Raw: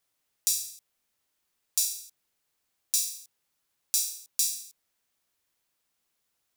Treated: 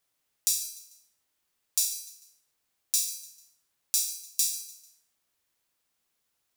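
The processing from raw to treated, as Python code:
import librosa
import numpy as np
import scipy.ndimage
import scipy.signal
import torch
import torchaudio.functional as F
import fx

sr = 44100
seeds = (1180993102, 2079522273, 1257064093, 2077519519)

y = fx.echo_feedback(x, sr, ms=148, feedback_pct=38, wet_db=-16)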